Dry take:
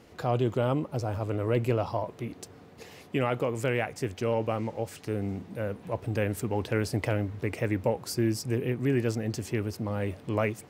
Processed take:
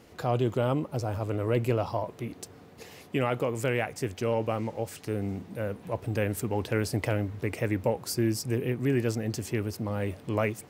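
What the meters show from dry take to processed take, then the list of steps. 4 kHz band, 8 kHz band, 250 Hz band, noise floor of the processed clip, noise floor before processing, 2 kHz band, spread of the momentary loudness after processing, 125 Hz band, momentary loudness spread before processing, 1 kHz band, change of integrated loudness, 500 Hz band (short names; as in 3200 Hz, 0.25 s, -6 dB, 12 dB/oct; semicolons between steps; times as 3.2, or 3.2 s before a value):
+1.0 dB, +2.5 dB, 0.0 dB, -51 dBFS, -51 dBFS, 0.0 dB, 8 LU, 0.0 dB, 8 LU, 0.0 dB, 0.0 dB, 0.0 dB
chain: high shelf 8400 Hz +5.5 dB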